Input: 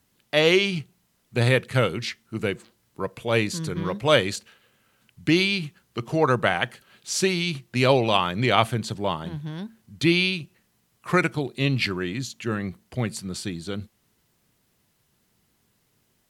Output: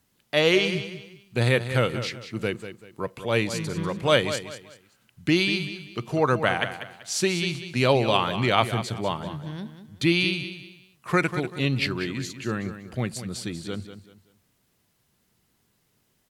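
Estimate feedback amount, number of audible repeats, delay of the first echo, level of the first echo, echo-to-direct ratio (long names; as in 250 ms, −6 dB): 31%, 3, 192 ms, −11.0 dB, −10.5 dB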